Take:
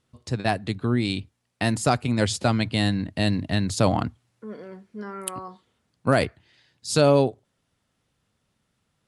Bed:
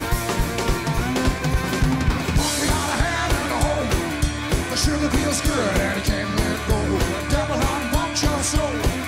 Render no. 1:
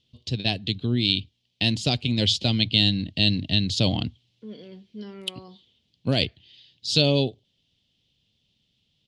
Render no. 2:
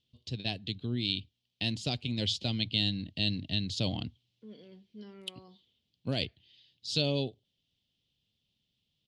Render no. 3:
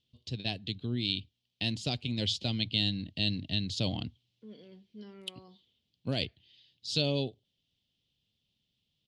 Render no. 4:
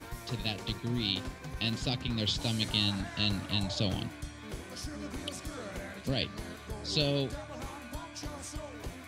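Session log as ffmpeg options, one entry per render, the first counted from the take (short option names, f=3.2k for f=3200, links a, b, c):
-af "firequalizer=gain_entry='entry(160,0);entry(1300,-19);entry(3100,14);entry(8900,-14)':delay=0.05:min_phase=1"
-af "volume=-9.5dB"
-af anull
-filter_complex "[1:a]volume=-20.5dB[a];[0:a][a]amix=inputs=2:normalize=0"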